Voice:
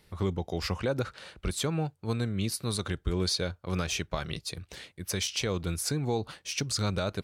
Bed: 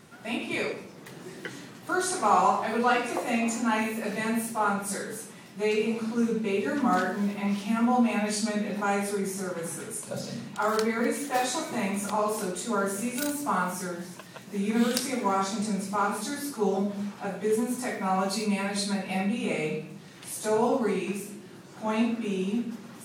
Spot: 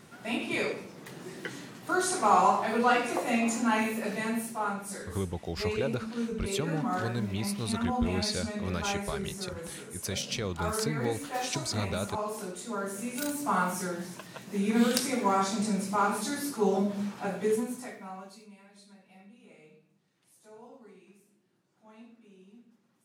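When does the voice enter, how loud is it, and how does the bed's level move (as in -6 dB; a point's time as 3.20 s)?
4.95 s, -3.0 dB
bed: 3.94 s -0.5 dB
4.83 s -7 dB
12.82 s -7 dB
13.61 s 0 dB
17.45 s 0 dB
18.56 s -26.5 dB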